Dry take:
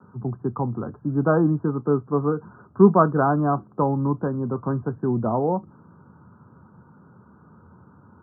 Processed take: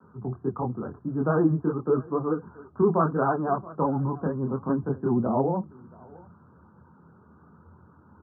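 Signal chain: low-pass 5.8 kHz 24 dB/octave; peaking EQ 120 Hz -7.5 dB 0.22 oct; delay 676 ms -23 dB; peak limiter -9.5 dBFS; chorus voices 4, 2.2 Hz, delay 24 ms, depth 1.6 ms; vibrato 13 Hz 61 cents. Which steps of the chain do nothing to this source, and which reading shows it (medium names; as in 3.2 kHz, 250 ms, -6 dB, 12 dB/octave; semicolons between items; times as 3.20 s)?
low-pass 5.8 kHz: input has nothing above 1.5 kHz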